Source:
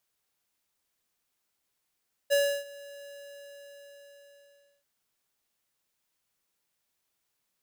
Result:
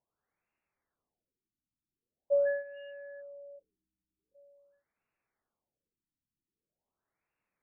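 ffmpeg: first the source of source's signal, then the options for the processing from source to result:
-f lavfi -i "aevalsrc='0.075*(2*lt(mod(567*t,1),0.5)-1)':duration=2.54:sample_rate=44100,afade=type=in:duration=0.027,afade=type=out:start_time=0.027:duration=0.311:silence=0.0708,afade=type=out:start_time=0.75:duration=1.79"
-af "afftfilt=real='re*lt(b*sr/1024,320*pow(2900/320,0.5+0.5*sin(2*PI*0.44*pts/sr)))':imag='im*lt(b*sr/1024,320*pow(2900/320,0.5+0.5*sin(2*PI*0.44*pts/sr)))':win_size=1024:overlap=0.75"

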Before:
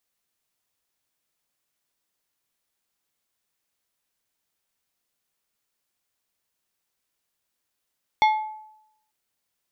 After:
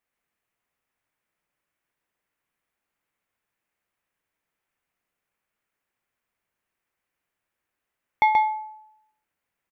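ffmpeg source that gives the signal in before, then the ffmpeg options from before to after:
-f lavfi -i "aevalsrc='0.224*pow(10,-3*t/0.81)*sin(2*PI*863*t)+0.1*pow(10,-3*t/0.427)*sin(2*PI*2157.5*t)+0.0447*pow(10,-3*t/0.307)*sin(2*PI*3452*t)+0.02*pow(10,-3*t/0.263)*sin(2*PI*4315*t)+0.00891*pow(10,-3*t/0.218)*sin(2*PI*5609.5*t)':duration=0.89:sample_rate=44100"
-filter_complex "[0:a]highshelf=frequency=3000:width_type=q:width=1.5:gain=-9.5,asplit=2[link_01][link_02];[link_02]aecho=0:1:131:0.631[link_03];[link_01][link_03]amix=inputs=2:normalize=0"

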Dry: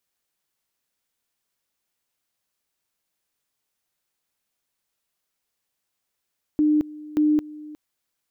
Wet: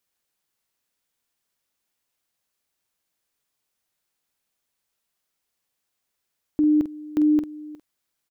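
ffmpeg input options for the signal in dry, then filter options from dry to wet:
-f lavfi -i "aevalsrc='pow(10,(-15.5-20*gte(mod(t,0.58),0.22))/20)*sin(2*PI*302*t)':duration=1.16:sample_rate=44100"
-filter_complex "[0:a]asplit=2[link_01][link_02];[link_02]adelay=47,volume=-10.5dB[link_03];[link_01][link_03]amix=inputs=2:normalize=0"

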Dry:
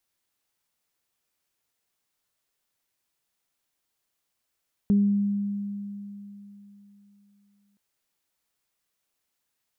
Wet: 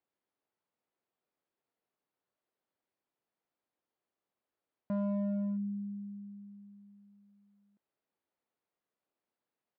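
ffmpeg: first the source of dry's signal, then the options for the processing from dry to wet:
-f lavfi -i "aevalsrc='0.158*pow(10,-3*t/3.44)*sin(2*PI*202*t)+0.0224*pow(10,-3*t/0.53)*sin(2*PI*404*t)':duration=2.87:sample_rate=44100"
-af "aresample=11025,asoftclip=type=hard:threshold=-28dB,aresample=44100,bandpass=frequency=420:width_type=q:width=0.68:csg=0"

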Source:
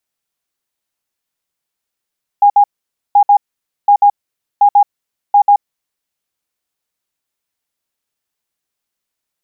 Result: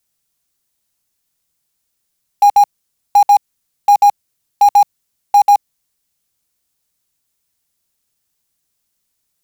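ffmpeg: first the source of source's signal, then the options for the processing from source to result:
-f lavfi -i "aevalsrc='0.631*sin(2*PI*816*t)*clip(min(mod(mod(t,0.73),0.14),0.08-mod(mod(t,0.73),0.14))/0.005,0,1)*lt(mod(t,0.73),0.28)':duration=3.65:sample_rate=44100"
-filter_complex "[0:a]bass=frequency=250:gain=9,treble=frequency=4000:gain=8,asplit=2[link_01][link_02];[link_02]aeval=exprs='(mod(3.76*val(0)+1,2)-1)/3.76':channel_layout=same,volume=-12dB[link_03];[link_01][link_03]amix=inputs=2:normalize=0"

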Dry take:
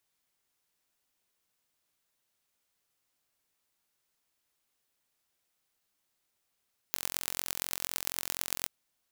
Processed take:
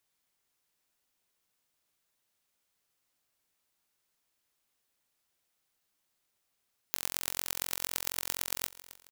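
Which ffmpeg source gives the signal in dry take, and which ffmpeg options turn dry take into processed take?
-f lavfi -i "aevalsrc='0.75*eq(mod(n,1000),0)*(0.5+0.5*eq(mod(n,5000),0))':duration=1.74:sample_rate=44100"
-af "aecho=1:1:270|540|810:0.141|0.0565|0.0226"

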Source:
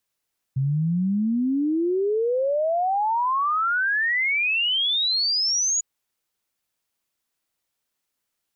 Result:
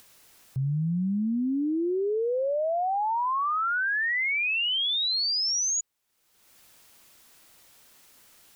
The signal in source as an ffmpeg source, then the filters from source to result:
-f lavfi -i "aevalsrc='0.106*clip(min(t,5.25-t)/0.01,0,1)*sin(2*PI*130*5.25/log(6900/130)*(exp(log(6900/130)*t/5.25)-1))':duration=5.25:sample_rate=44100"
-af "alimiter=limit=-23.5dB:level=0:latency=1:release=36,acompressor=mode=upward:threshold=-37dB:ratio=2.5"

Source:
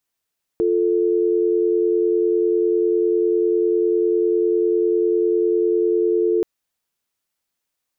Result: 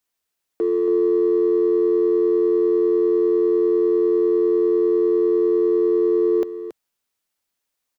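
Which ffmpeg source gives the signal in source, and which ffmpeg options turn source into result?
-f lavfi -i "aevalsrc='0.126*(sin(2*PI*350*t)+sin(2*PI*440*t))':duration=5.83:sample_rate=44100"
-filter_complex "[0:a]equalizer=frequency=130:width=1.5:gain=-5,acrossover=split=250[link_01][link_02];[link_01]aeval=exprs='0.0141*(abs(mod(val(0)/0.0141+3,4)-2)-1)':channel_layout=same[link_03];[link_03][link_02]amix=inputs=2:normalize=0,aecho=1:1:277:0.282"

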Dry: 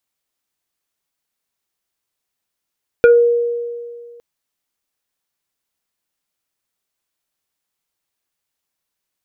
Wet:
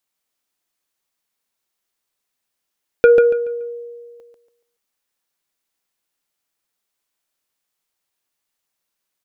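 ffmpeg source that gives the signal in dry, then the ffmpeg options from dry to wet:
-f lavfi -i "aevalsrc='0.631*pow(10,-3*t/2.03)*sin(2*PI*474*t+1*pow(10,-3*t/0.26)*sin(2*PI*2.03*474*t))':duration=1.16:sample_rate=44100"
-af "equalizer=frequency=79:width_type=o:width=2.2:gain=-5.5,aecho=1:1:142|284|426|568:0.531|0.149|0.0416|0.0117"

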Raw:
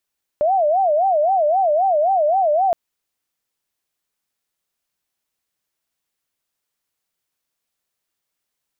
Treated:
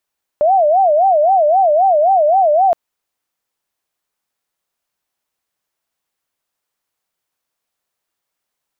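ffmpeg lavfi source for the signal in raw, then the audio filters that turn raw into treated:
-f lavfi -i "aevalsrc='0.211*sin(2*PI*(686.5*t-97.5/(2*PI*3.8)*sin(2*PI*3.8*t)))':duration=2.32:sample_rate=44100"
-af "equalizer=frequency=860:width=0.65:gain=5.5"

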